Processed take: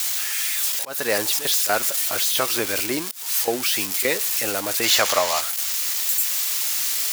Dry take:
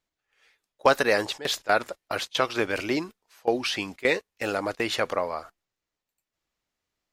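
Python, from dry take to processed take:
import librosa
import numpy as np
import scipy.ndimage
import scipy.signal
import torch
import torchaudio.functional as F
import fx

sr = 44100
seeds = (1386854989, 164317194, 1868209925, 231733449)

y = x + 0.5 * 10.0 ** (-14.5 / 20.0) * np.diff(np.sign(x), prepend=np.sign(x[:1]))
y = fx.auto_swell(y, sr, attack_ms=274.0)
y = fx.spec_box(y, sr, start_s=4.84, length_s=0.56, low_hz=560.0, high_hz=7600.0, gain_db=7)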